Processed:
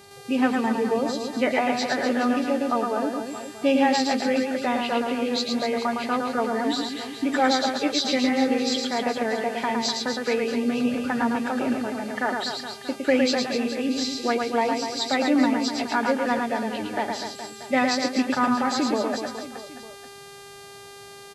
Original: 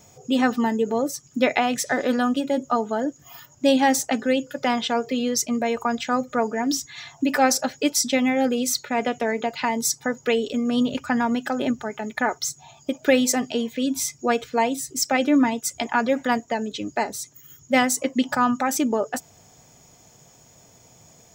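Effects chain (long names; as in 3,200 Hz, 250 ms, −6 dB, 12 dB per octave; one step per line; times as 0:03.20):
hearing-aid frequency compression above 1,900 Hz 1.5 to 1
hum with harmonics 400 Hz, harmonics 31, −47 dBFS −4 dB per octave
reverse bouncing-ball delay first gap 110 ms, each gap 1.25×, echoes 5
level −3 dB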